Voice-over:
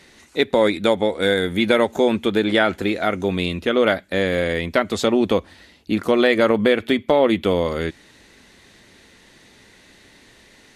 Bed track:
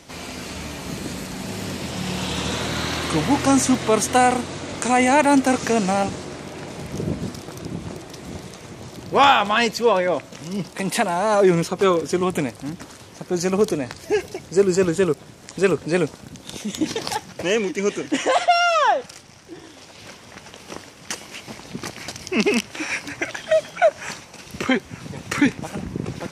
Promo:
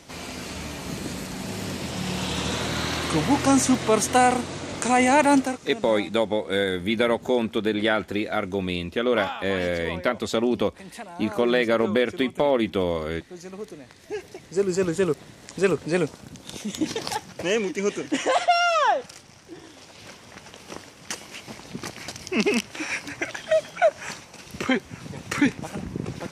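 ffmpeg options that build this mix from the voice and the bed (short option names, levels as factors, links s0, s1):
-filter_complex "[0:a]adelay=5300,volume=0.562[s0];[1:a]volume=4.47,afade=t=out:st=5.34:d=0.24:silence=0.158489,afade=t=in:st=13.84:d=1.29:silence=0.177828[s1];[s0][s1]amix=inputs=2:normalize=0"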